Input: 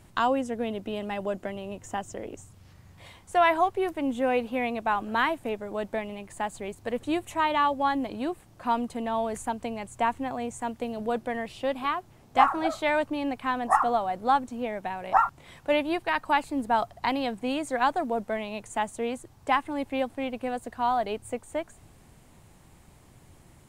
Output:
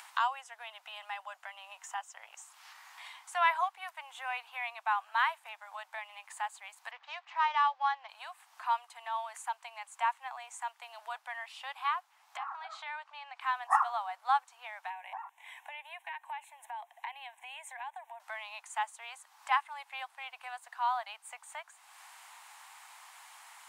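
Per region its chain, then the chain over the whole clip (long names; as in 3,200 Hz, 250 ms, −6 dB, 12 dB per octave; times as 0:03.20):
0:06.91–0:08.09: running median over 9 samples + low-pass filter 5,200 Hz 24 dB per octave
0:12.37–0:13.41: low-pass filter 5,300 Hz + downward compressor, threshold −31 dBFS
0:14.90–0:18.20: downward compressor 16 to 1, threshold −29 dBFS + phaser with its sweep stopped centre 1,300 Hz, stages 6
whole clip: Butterworth high-pass 820 Hz 48 dB per octave; high-shelf EQ 5,000 Hz −6 dB; upward compression, threshold −38 dBFS; level −2.5 dB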